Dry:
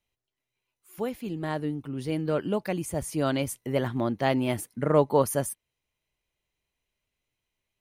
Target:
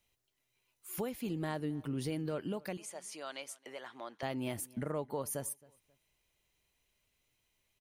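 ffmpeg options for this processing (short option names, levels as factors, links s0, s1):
-filter_complex "[0:a]highshelf=f=4000:g=5.5,acompressor=threshold=0.0112:ratio=2.5,alimiter=level_in=2:limit=0.0631:level=0:latency=1:release=404,volume=0.501,asettb=1/sr,asplit=3[s0][s1][s2];[s0]atrim=end=2.774[s3];[s1]atrim=start=2.77:end=4.23,asetpts=PTS-STARTPTS,afade=t=in:d=0.004:c=qsin,afade=t=out:st=1.456:d=0.004:c=qsin,highpass=720,lowpass=7000[s4];[s2]atrim=start=4.226[s5];[s3][s4]acrossfade=d=0.004:c1=hsin:c2=qsin[s6];[s6][s5]acrossfade=d=0.004:c1=qsin:c2=hsin,asplit=2[s7][s8];[s8]adelay=268,lowpass=f=3800:p=1,volume=0.0708,asplit=2[s9][s10];[s10]adelay=268,lowpass=f=3800:p=1,volume=0.29[s11];[s7][s9][s11]amix=inputs=3:normalize=0,volume=1.41"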